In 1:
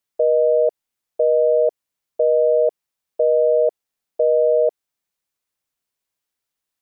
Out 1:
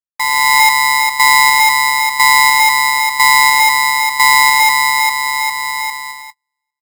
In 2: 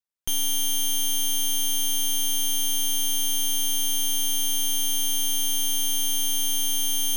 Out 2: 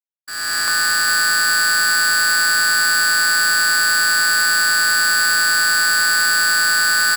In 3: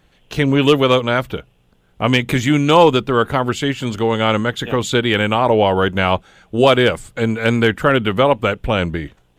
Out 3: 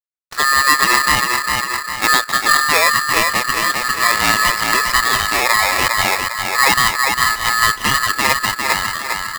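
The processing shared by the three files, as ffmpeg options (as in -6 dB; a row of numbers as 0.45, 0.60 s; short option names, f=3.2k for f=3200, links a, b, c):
-filter_complex "[0:a]highpass=160,lowpass=4.5k,acrusher=bits=6:dc=4:mix=0:aa=0.000001,asplit=2[a][b];[b]adelay=403,lowpass=f=1.5k:p=1,volume=-3dB,asplit=2[c][d];[d]adelay=403,lowpass=f=1.5k:p=1,volume=0.47,asplit=2[e][f];[f]adelay=403,lowpass=f=1.5k:p=1,volume=0.47,asplit=2[g][h];[h]adelay=403,lowpass=f=1.5k:p=1,volume=0.47,asplit=2[i][j];[j]adelay=403,lowpass=f=1.5k:p=1,volume=0.47,asplit=2[k][l];[l]adelay=403,lowpass=f=1.5k:p=1,volume=0.47[m];[c][e][g][i][k][m]amix=inputs=6:normalize=0[n];[a][n]amix=inputs=2:normalize=0,agate=range=-46dB:threshold=-39dB:ratio=16:detection=peak,equalizer=f=240:w=1.4:g=5.5,bandreject=f=530:w=12,dynaudnorm=f=290:g=3:m=16dB,aeval=exprs='val(0)*sgn(sin(2*PI*1500*n/s))':c=same,volume=-1dB"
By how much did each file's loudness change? 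+8.5, +9.5, +2.0 LU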